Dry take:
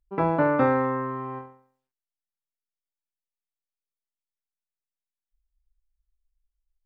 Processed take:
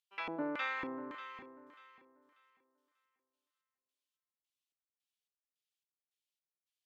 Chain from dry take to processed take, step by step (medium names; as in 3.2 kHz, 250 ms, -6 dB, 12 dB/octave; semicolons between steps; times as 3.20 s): differentiator; LFO band-pass square 1.8 Hz 270–3000 Hz; thinning echo 590 ms, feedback 27%, high-pass 180 Hz, level -13 dB; trim +16.5 dB